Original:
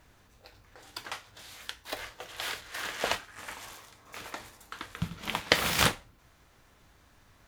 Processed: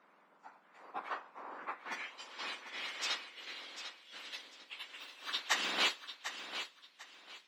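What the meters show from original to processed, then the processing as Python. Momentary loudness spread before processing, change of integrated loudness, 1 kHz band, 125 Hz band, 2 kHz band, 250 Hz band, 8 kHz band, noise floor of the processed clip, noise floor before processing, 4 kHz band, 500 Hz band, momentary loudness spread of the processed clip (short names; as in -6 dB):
19 LU, -7.0 dB, -6.0 dB, under -30 dB, -5.5 dB, -13.5 dB, -8.5 dB, -67 dBFS, -62 dBFS, -4.0 dB, -12.0 dB, 19 LU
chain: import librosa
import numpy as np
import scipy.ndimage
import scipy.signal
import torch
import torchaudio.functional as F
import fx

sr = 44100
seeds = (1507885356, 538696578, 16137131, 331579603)

y = fx.octave_mirror(x, sr, pivot_hz=1900.0)
y = fx.filter_sweep_bandpass(y, sr, from_hz=1200.0, to_hz=3600.0, start_s=1.55, end_s=2.29, q=1.9)
y = fx.echo_thinned(y, sr, ms=747, feedback_pct=27, hz=210.0, wet_db=-10.0)
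y = F.gain(torch.from_numpy(y), 5.5).numpy()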